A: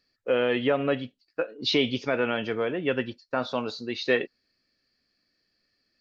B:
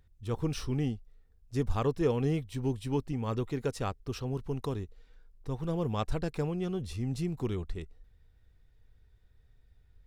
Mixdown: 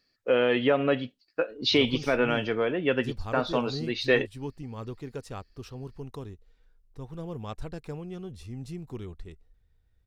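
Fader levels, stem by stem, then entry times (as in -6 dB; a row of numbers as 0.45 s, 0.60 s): +1.0 dB, -5.5 dB; 0.00 s, 1.50 s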